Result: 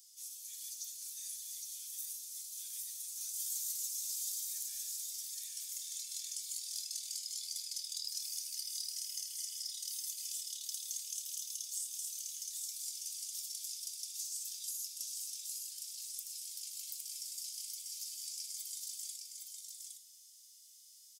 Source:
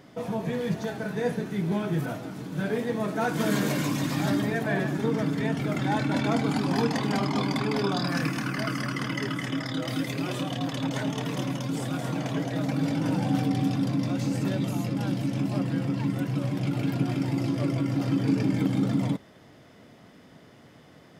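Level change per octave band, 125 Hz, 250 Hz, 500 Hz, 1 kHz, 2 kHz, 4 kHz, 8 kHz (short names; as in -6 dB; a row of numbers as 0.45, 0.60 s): under -40 dB, under -40 dB, under -40 dB, under -40 dB, -32.0 dB, -5.0 dB, +7.5 dB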